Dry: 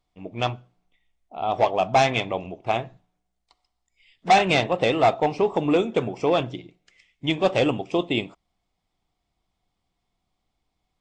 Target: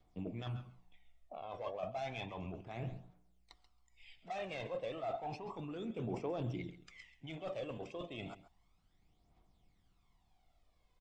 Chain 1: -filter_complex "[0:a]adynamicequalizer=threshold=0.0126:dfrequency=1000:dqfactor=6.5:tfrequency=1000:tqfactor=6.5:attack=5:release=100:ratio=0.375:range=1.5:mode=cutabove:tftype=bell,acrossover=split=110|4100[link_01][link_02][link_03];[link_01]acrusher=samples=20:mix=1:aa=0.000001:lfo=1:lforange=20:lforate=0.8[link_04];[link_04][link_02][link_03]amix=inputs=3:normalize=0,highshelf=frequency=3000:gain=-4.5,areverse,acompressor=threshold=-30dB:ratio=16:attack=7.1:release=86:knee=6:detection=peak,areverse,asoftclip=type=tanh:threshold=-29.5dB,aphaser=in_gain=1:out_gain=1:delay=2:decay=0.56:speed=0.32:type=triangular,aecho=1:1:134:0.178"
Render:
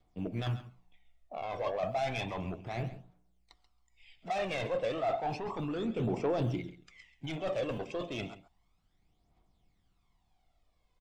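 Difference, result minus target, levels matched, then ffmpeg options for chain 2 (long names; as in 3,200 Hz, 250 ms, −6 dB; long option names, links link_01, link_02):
downward compressor: peak gain reduction −11 dB; sample-and-hold swept by an LFO: distortion +15 dB
-filter_complex "[0:a]adynamicequalizer=threshold=0.0126:dfrequency=1000:dqfactor=6.5:tfrequency=1000:tqfactor=6.5:attack=5:release=100:ratio=0.375:range=1.5:mode=cutabove:tftype=bell,acrossover=split=110|4100[link_01][link_02][link_03];[link_01]acrusher=samples=4:mix=1:aa=0.000001:lfo=1:lforange=4:lforate=0.8[link_04];[link_04][link_02][link_03]amix=inputs=3:normalize=0,highshelf=frequency=3000:gain=-4.5,areverse,acompressor=threshold=-41.5dB:ratio=16:attack=7.1:release=86:knee=6:detection=peak,areverse,asoftclip=type=tanh:threshold=-29.5dB,aphaser=in_gain=1:out_gain=1:delay=2:decay=0.56:speed=0.32:type=triangular,aecho=1:1:134:0.178"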